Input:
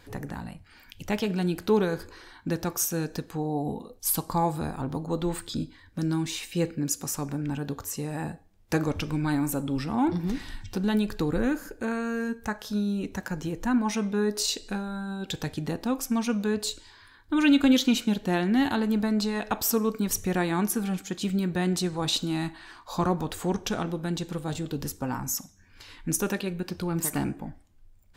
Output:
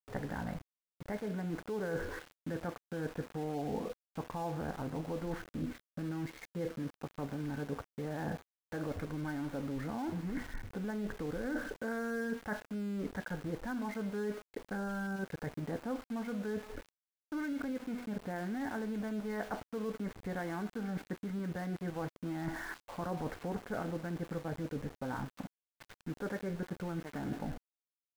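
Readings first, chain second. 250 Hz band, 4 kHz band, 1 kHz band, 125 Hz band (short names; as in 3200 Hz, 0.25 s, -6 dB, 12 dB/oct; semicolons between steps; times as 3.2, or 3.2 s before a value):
-11.5 dB, -21.0 dB, -10.0 dB, -9.5 dB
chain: expander -43 dBFS; notch 360 Hz, Q 12; de-hum 244.5 Hz, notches 8; in parallel at 0 dB: level quantiser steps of 17 dB; on the sum: limiter -19.5 dBFS, peak gain reduction 14.5 dB; reverse; compressor 12:1, threshold -37 dBFS, peak gain reduction 15 dB; reverse; rippled Chebyshev low-pass 2200 Hz, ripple 6 dB; sample gate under -52.5 dBFS; gain +6.5 dB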